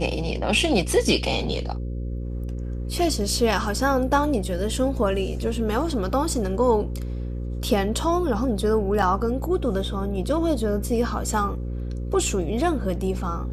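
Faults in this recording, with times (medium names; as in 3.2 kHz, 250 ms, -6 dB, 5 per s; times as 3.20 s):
buzz 60 Hz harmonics 9 -29 dBFS
9.02–9.03 s: dropout 5.7 ms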